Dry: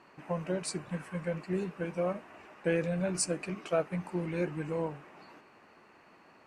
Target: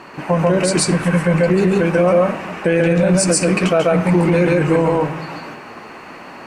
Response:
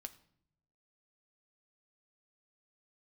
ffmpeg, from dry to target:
-filter_complex "[0:a]asplit=2[s0][s1];[1:a]atrim=start_sample=2205,adelay=139[s2];[s1][s2]afir=irnorm=-1:irlink=0,volume=1.78[s3];[s0][s3]amix=inputs=2:normalize=0,alimiter=level_in=20:limit=0.891:release=50:level=0:latency=1,volume=0.531"

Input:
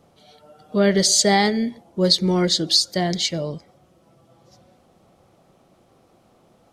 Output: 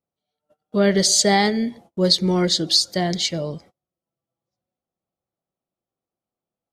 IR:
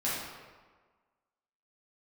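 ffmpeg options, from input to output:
-af "agate=range=0.0224:threshold=0.00631:ratio=16:detection=peak"

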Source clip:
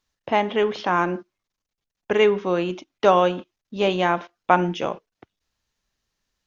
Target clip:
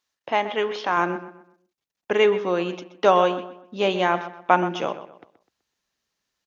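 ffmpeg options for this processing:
-filter_complex "[0:a]asetnsamples=n=441:p=0,asendcmd='0.97 highpass f 230',highpass=f=540:p=1,asplit=2[s0][s1];[s1]adelay=126,lowpass=f=3000:p=1,volume=0.251,asplit=2[s2][s3];[s3]adelay=126,lowpass=f=3000:p=1,volume=0.35,asplit=2[s4][s5];[s5]adelay=126,lowpass=f=3000:p=1,volume=0.35,asplit=2[s6][s7];[s7]adelay=126,lowpass=f=3000:p=1,volume=0.35[s8];[s0][s2][s4][s6][s8]amix=inputs=5:normalize=0"

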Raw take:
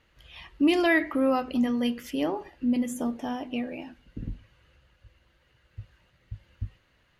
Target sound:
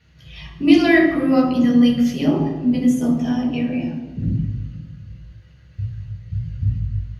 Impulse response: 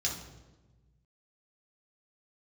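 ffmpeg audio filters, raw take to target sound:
-filter_complex "[0:a]equalizer=f=160:w=1.4:g=14[s0];[1:a]atrim=start_sample=2205,asetrate=40131,aresample=44100[s1];[s0][s1]afir=irnorm=-1:irlink=0"

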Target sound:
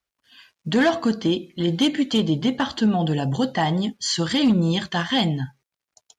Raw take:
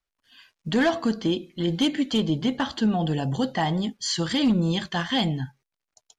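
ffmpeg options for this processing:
-af "highpass=51,volume=1.41"

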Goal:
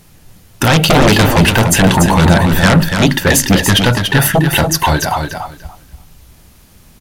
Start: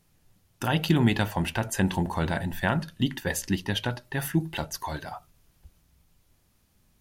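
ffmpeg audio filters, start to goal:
-af "aeval=exprs='0.355*sin(PI/2*4.47*val(0)/0.355)':c=same,aecho=1:1:288|576|864:0.501|0.0902|0.0162,volume=1.58"

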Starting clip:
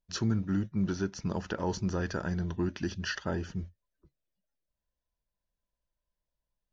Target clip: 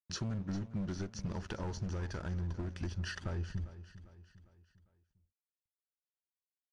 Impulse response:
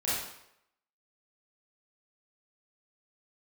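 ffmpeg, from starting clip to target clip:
-filter_complex "[0:a]volume=26.6,asoftclip=hard,volume=0.0376,agate=range=0.0224:threshold=0.00224:ratio=3:detection=peak,asubboost=boost=8.5:cutoff=63,acompressor=threshold=0.0112:ratio=6,aeval=exprs='sgn(val(0))*max(abs(val(0))-0.00119,0)':c=same,equalizer=f=120:w=0.78:g=5,asplit=2[s0][s1];[s1]aecho=0:1:401|802|1203|1604:0.178|0.08|0.036|0.0162[s2];[s0][s2]amix=inputs=2:normalize=0,aresample=22050,aresample=44100,volume=1.19"

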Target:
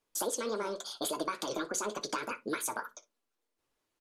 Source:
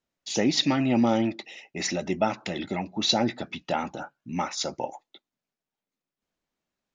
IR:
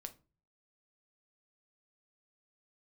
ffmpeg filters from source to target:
-filter_complex "[0:a]acompressor=threshold=0.02:ratio=10,flanger=delay=7.1:depth=9.7:regen=45:speed=2:shape=sinusoidal,aecho=1:1:100:0.106,asplit=2[s0][s1];[1:a]atrim=start_sample=2205[s2];[s1][s2]afir=irnorm=-1:irlink=0,volume=2.11[s3];[s0][s3]amix=inputs=2:normalize=0,asetrate=76440,aresample=44100"

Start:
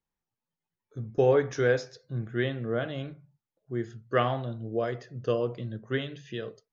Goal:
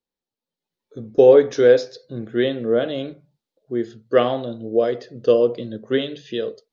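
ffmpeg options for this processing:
-af "dynaudnorm=f=420:g=3:m=2.51,equalizer=f=125:t=o:w=1:g=-5,equalizer=f=250:t=o:w=1:g=8,equalizer=f=500:t=o:w=1:g=11,equalizer=f=4000:t=o:w=1:g=12,volume=0.447"

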